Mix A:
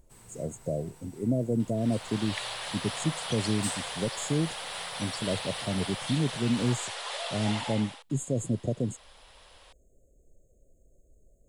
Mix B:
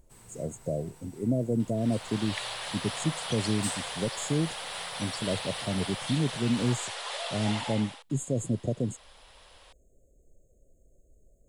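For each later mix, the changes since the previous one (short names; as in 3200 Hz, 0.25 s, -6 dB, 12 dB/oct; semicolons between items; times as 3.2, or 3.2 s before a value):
none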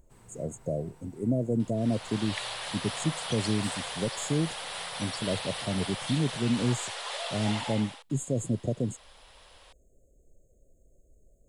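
first sound: add high shelf 3000 Hz -10.5 dB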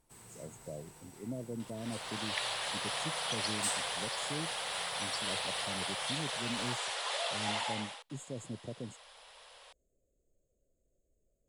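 speech -12.0 dB; first sound: add high shelf 3000 Hz +10.5 dB; master: add low shelf 110 Hz -6.5 dB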